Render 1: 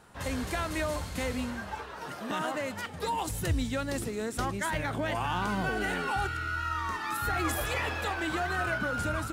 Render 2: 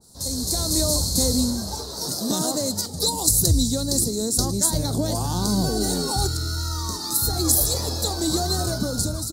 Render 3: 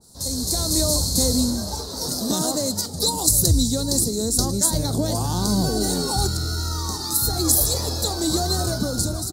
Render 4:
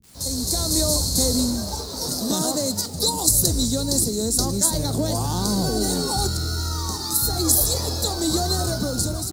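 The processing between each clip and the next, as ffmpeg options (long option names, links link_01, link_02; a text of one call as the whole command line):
ffmpeg -i in.wav -af "firequalizer=gain_entry='entry(230,0);entry(1700,-23);entry(2800,-24);entry(4100,14)':delay=0.05:min_phase=1,dynaudnorm=framelen=100:gausssize=11:maxgain=10.5dB,adynamicequalizer=threshold=0.0126:dfrequency=2000:dqfactor=0.7:tfrequency=2000:tqfactor=0.7:attack=5:release=100:ratio=0.375:range=2:mode=cutabove:tftype=highshelf,volume=2dB" out.wav
ffmpeg -i in.wav -filter_complex "[0:a]asplit=2[link_01][link_02];[link_02]adelay=758,volume=-16dB,highshelf=frequency=4000:gain=-17.1[link_03];[link_01][link_03]amix=inputs=2:normalize=0,volume=1dB" out.wav
ffmpeg -i in.wav -filter_complex "[0:a]acrossover=split=290[link_01][link_02];[link_01]asoftclip=type=hard:threshold=-22dB[link_03];[link_02]acrusher=bits=7:mix=0:aa=0.000001[link_04];[link_03][link_04]amix=inputs=2:normalize=0" out.wav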